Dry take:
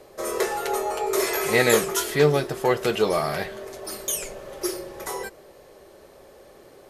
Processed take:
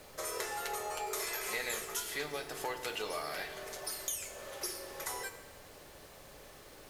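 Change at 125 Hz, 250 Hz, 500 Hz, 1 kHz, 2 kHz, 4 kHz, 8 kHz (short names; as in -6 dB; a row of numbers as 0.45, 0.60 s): -24.5, -21.5, -18.5, -12.5, -11.5, -9.5, -9.0 dB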